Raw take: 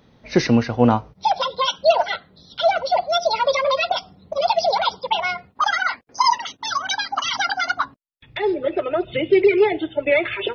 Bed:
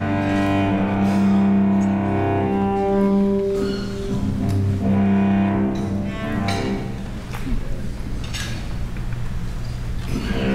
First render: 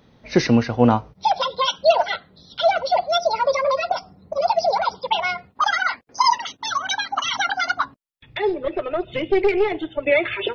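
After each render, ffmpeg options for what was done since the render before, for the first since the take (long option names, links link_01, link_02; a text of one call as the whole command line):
ffmpeg -i in.wav -filter_complex "[0:a]asettb=1/sr,asplit=3[link_01][link_02][link_03];[link_01]atrim=end=3.214[link_04];[link_02]atrim=start=3.21:end=4.95,asetpts=PTS-STARTPTS,afade=type=in:duration=0.004:curve=qsin,afade=type=out:start_time=1.736:duration=0.004:curve=qsin,equalizer=frequency=3300:width=2.3:gain=-14.5[link_05];[link_03]atrim=start=4.946[link_06];[link_04][link_05]acrossfade=duration=0.004:curve1=hsin:curve2=qsin[link_07];[link_07][link_06]acrossfade=duration=0.004:curve1=qsin:curve2=hsin,asettb=1/sr,asplit=3[link_08][link_09][link_10];[link_08]atrim=end=6.684[link_11];[link_09]atrim=start=6.68:end=7.54,asetpts=PTS-STARTPTS,afade=type=in:duration=0.004:curve=qsin,afade=type=out:start_time=0.856:duration=0.004:curve=qsin,asuperstop=centerf=4900:order=4:qfactor=5.6[link_12];[link_10]atrim=start=7.536[link_13];[link_11][link_12]acrossfade=duration=0.004:curve1=hsin:curve2=qsin[link_14];[link_14][link_13]acrossfade=duration=0.004:curve1=qsin:curve2=hsin,asettb=1/sr,asplit=3[link_15][link_16][link_17];[link_15]atrim=end=8.494[link_18];[link_16]atrim=start=8.49:end=10.03,asetpts=PTS-STARTPTS,afade=type=in:duration=0.004:curve=qsin,afade=type=out:start_time=1.536:duration=0.004:curve=qsin,aeval=exprs='(tanh(3.16*val(0)+0.55)-tanh(0.55))/3.16':channel_layout=same[link_19];[link_17]atrim=start=10.026[link_20];[link_18][link_19]acrossfade=duration=0.004:curve1=hsin:curve2=qsin[link_21];[link_21][link_20]acrossfade=duration=0.004:curve1=qsin:curve2=hsin" out.wav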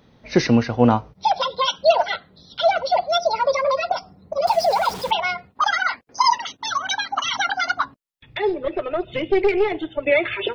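ffmpeg -i in.wav -filter_complex "[0:a]asettb=1/sr,asplit=3[link_01][link_02][link_03];[link_01]atrim=end=4.474[link_04];[link_02]atrim=start=4.47:end=5.11,asetpts=PTS-STARTPTS,afade=type=in:duration=0.004:curve=qsin,afade=type=out:start_time=0.636:duration=0.004:curve=qsin,aeval=exprs='val(0)+0.5*0.0376*sgn(val(0))':channel_layout=same[link_05];[link_03]atrim=start=5.106[link_06];[link_04][link_05]acrossfade=duration=0.004:curve1=hsin:curve2=qsin[link_07];[link_07][link_06]acrossfade=duration=0.004:curve1=qsin:curve2=hsin" out.wav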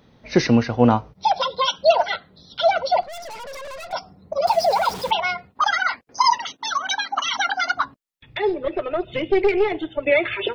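ffmpeg -i in.wav -filter_complex "[0:a]asettb=1/sr,asplit=3[link_01][link_02][link_03];[link_01]atrim=end=3.024[link_04];[link_02]atrim=start=3.02:end=3.93,asetpts=PTS-STARTPTS,afade=type=in:duration=0.004:curve=qsin,afade=type=out:start_time=0.906:duration=0.004:curve=qsin,aeval=exprs='(tanh(50.1*val(0)+0.45)-tanh(0.45))/50.1':channel_layout=same[link_05];[link_03]atrim=start=3.926[link_06];[link_04][link_05]acrossfade=duration=0.004:curve1=hsin:curve2=qsin[link_07];[link_07][link_06]acrossfade=duration=0.004:curve1=qsin:curve2=hsin,asettb=1/sr,asplit=3[link_08][link_09][link_10];[link_08]atrim=end=6.524[link_11];[link_09]atrim=start=6.52:end=7.75,asetpts=PTS-STARTPTS,afade=type=in:duration=0.004:curve=qsin,afade=type=out:start_time=1.226:duration=0.004:curve=qsin,highpass=200[link_12];[link_10]atrim=start=7.746[link_13];[link_11][link_12]acrossfade=duration=0.004:curve1=hsin:curve2=qsin[link_14];[link_14][link_13]acrossfade=duration=0.004:curve1=qsin:curve2=hsin" out.wav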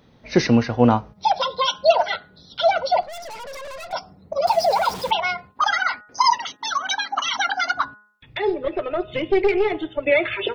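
ffmpeg -i in.wav -af "bandreject=frequency=209.1:width_type=h:width=4,bandreject=frequency=418.2:width_type=h:width=4,bandreject=frequency=627.3:width_type=h:width=4,bandreject=frequency=836.4:width_type=h:width=4,bandreject=frequency=1045.5:width_type=h:width=4,bandreject=frequency=1254.6:width_type=h:width=4,bandreject=frequency=1463.7:width_type=h:width=4,bandreject=frequency=1672.8:width_type=h:width=4,bandreject=frequency=1881.9:width_type=h:width=4" out.wav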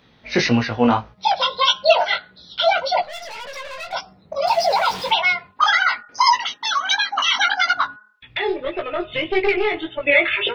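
ffmpeg -i in.wav -filter_complex "[0:a]acrossover=split=3700[link_01][link_02];[link_01]crystalizer=i=9.5:c=0[link_03];[link_03][link_02]amix=inputs=2:normalize=0,flanger=delay=16:depth=5.4:speed=1.7" out.wav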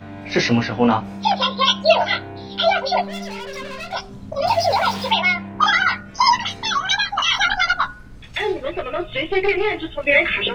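ffmpeg -i in.wav -i bed.wav -filter_complex "[1:a]volume=-14.5dB[link_01];[0:a][link_01]amix=inputs=2:normalize=0" out.wav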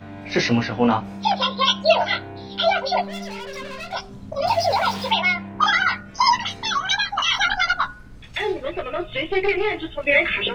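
ffmpeg -i in.wav -af "volume=-2dB" out.wav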